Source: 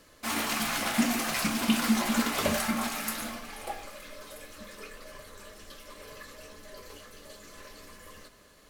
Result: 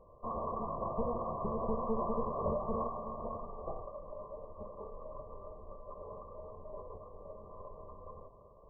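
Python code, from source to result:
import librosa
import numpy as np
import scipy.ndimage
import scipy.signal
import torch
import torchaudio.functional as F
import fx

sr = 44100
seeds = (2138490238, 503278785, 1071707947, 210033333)

y = fx.lower_of_two(x, sr, delay_ms=1.8)
y = 10.0 ** (-31.0 / 20.0) * np.tanh(y / 10.0 ** (-31.0 / 20.0))
y = fx.brickwall_lowpass(y, sr, high_hz=1200.0)
y = y * 10.0 ** (3.5 / 20.0)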